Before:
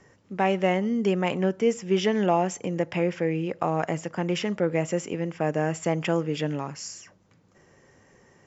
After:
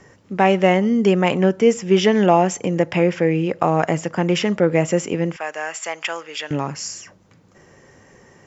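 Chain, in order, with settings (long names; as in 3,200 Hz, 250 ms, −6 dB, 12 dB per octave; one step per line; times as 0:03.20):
0:05.36–0:06.51: high-pass filter 1,100 Hz 12 dB per octave
level +8 dB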